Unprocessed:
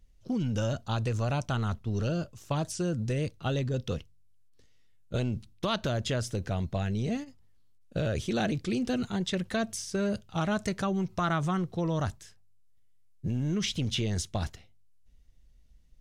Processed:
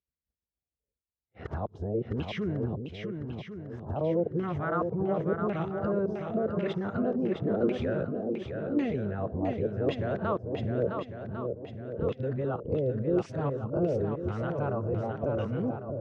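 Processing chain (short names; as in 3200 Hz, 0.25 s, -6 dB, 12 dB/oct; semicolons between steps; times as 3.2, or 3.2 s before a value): whole clip reversed; limiter -28 dBFS, peak gain reduction 11 dB; HPF 61 Hz 24 dB/oct; low shelf 210 Hz +3 dB; compressor 6:1, threshold -42 dBFS, peak gain reduction 13 dB; LFO low-pass saw down 0.91 Hz 410–2500 Hz; spectral noise reduction 9 dB; expander -56 dBFS; bell 440 Hz +10.5 dB 1.4 oct; swung echo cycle 1.1 s, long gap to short 1.5:1, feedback 36%, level -5.5 dB; gain +8 dB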